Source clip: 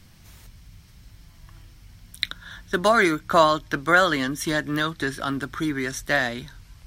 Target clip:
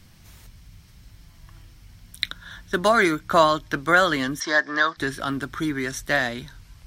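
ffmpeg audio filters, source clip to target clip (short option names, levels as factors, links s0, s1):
-filter_complex "[0:a]asplit=3[s0][s1][s2];[s0]afade=t=out:st=4.39:d=0.02[s3];[s1]highpass=400,equalizer=f=690:t=q:w=4:g=7,equalizer=f=1100:t=q:w=4:g=7,equalizer=f=1700:t=q:w=4:g=9,equalizer=f=2700:t=q:w=4:g=-10,equalizer=f=5100:t=q:w=4:g=9,lowpass=f=6100:w=0.5412,lowpass=f=6100:w=1.3066,afade=t=in:st=4.39:d=0.02,afade=t=out:st=4.96:d=0.02[s4];[s2]afade=t=in:st=4.96:d=0.02[s5];[s3][s4][s5]amix=inputs=3:normalize=0"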